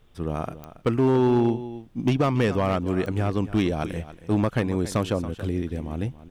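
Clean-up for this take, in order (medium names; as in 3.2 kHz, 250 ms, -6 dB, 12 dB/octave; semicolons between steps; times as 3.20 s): clip repair -15 dBFS; de-click; expander -37 dBFS, range -21 dB; inverse comb 278 ms -15 dB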